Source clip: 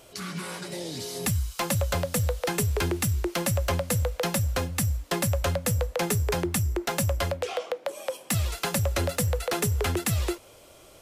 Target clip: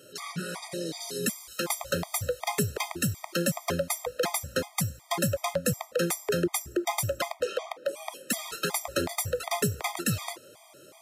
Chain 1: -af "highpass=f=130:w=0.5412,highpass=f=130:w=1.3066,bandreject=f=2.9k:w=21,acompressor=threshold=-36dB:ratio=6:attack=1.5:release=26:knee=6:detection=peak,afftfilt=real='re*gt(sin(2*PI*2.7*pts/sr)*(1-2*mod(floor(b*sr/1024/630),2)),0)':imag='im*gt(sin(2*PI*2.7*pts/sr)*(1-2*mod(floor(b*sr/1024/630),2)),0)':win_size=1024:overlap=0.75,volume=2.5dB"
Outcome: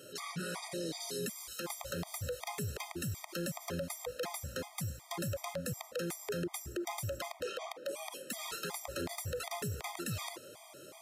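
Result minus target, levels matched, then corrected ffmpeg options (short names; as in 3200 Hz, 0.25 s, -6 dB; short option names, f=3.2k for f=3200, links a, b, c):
compressor: peak gain reduction +14 dB
-af "highpass=f=130:w=0.5412,highpass=f=130:w=1.3066,bandreject=f=2.9k:w=21,afftfilt=real='re*gt(sin(2*PI*2.7*pts/sr)*(1-2*mod(floor(b*sr/1024/630),2)),0)':imag='im*gt(sin(2*PI*2.7*pts/sr)*(1-2*mod(floor(b*sr/1024/630),2)),0)':win_size=1024:overlap=0.75,volume=2.5dB"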